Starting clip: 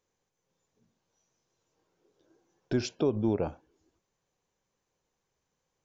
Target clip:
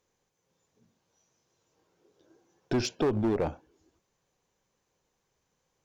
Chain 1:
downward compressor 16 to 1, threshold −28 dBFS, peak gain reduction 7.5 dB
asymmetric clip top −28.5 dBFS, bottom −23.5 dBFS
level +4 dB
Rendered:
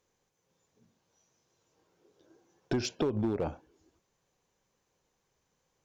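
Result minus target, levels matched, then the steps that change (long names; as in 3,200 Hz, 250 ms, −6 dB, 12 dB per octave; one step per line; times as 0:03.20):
downward compressor: peak gain reduction +7.5 dB
remove: downward compressor 16 to 1, threshold −28 dBFS, peak gain reduction 7.5 dB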